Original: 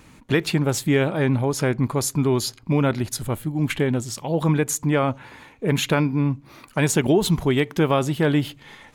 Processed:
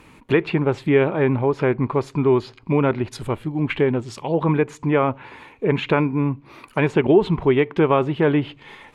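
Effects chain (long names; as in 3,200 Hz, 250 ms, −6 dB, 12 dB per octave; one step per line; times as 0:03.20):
graphic EQ with 15 bands 400 Hz +7 dB, 1,000 Hz +6 dB, 2,500 Hz +6 dB, 6,300 Hz −5 dB
treble cut that deepens with the level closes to 2,400 Hz, closed at −15.5 dBFS
level −1.5 dB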